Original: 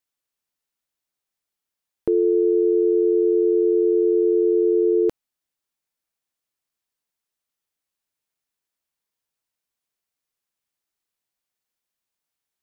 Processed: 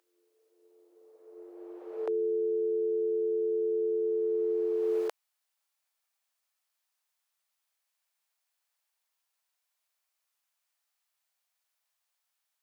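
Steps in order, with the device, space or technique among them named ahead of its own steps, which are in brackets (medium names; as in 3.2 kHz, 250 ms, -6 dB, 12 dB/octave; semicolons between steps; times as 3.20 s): ghost voice (reverse; reverberation RT60 2.6 s, pre-delay 15 ms, DRR 2.5 dB; reverse; high-pass 630 Hz 24 dB/octave); trim +1.5 dB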